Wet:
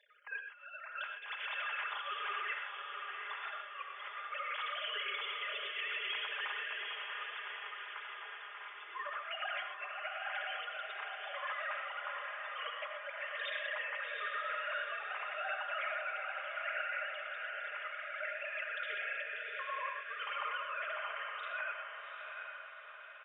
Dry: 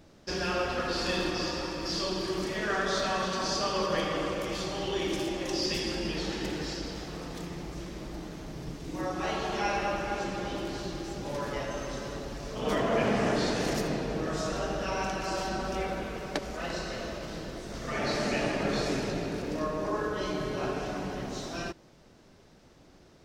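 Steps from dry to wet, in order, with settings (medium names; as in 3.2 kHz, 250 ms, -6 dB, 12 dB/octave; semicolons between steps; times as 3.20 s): formants replaced by sine waves; high-pass 1.2 kHz 24 dB/octave; treble shelf 2.5 kHz -11 dB; comb 4.9 ms, depth 65%; compressor with a negative ratio -45 dBFS, ratio -0.5; echo that smears into a reverb 769 ms, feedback 51%, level -5 dB; gated-style reverb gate 140 ms rising, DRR 5 dB; trim +2.5 dB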